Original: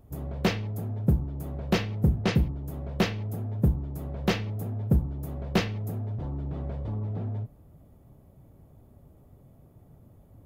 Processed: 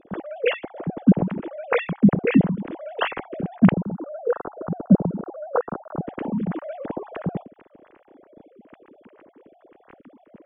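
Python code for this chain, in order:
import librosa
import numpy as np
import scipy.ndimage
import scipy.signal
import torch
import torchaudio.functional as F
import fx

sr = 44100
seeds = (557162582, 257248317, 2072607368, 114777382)

y = fx.sine_speech(x, sr)
y = fx.ellip_lowpass(y, sr, hz=1400.0, order=4, stop_db=40, at=(3.71, 6.03), fade=0.02)
y = F.gain(torch.from_numpy(y), 5.5).numpy()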